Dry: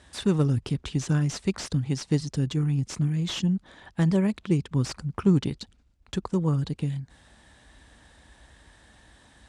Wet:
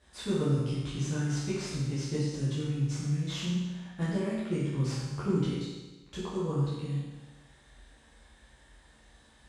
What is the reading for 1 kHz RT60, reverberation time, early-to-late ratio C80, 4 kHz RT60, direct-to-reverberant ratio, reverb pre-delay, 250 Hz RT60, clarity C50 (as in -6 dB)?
1.2 s, 1.2 s, 2.0 dB, 1.2 s, -10.5 dB, 11 ms, 1.2 s, -1.0 dB